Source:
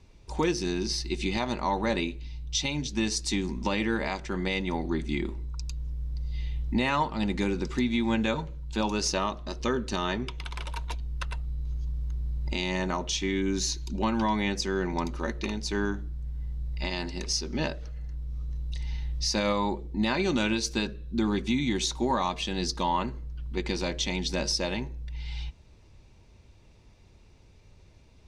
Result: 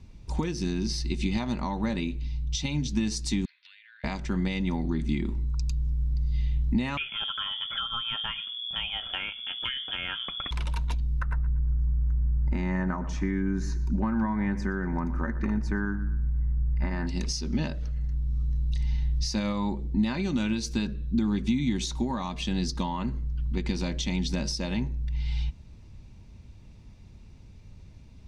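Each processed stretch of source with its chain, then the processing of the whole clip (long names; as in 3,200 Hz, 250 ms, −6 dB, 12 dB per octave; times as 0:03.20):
0:03.45–0:04.04: Chebyshev band-pass filter 1,500–4,300 Hz, order 4 + downward compressor 16 to 1, threshold −49 dBFS
0:06.97–0:10.51: parametric band 2,000 Hz +13 dB 0.29 octaves + voice inversion scrambler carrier 3,400 Hz
0:11.20–0:17.07: high shelf with overshoot 2,300 Hz −12.5 dB, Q 3 + repeating echo 119 ms, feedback 35%, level −18 dB
whole clip: downward compressor, threshold −29 dBFS; low shelf with overshoot 300 Hz +7 dB, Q 1.5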